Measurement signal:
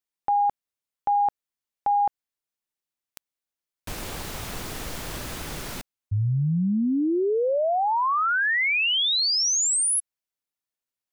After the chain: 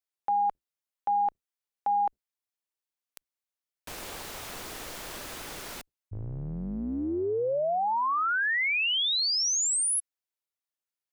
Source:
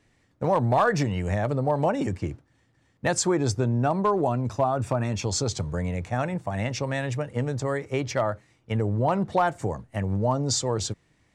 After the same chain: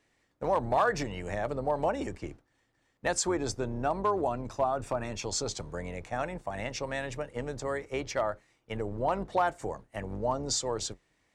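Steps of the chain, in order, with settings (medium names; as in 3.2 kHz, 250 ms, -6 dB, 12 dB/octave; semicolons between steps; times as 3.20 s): octave divider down 2 oct, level -3 dB; tone controls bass -11 dB, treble 0 dB; trim -4 dB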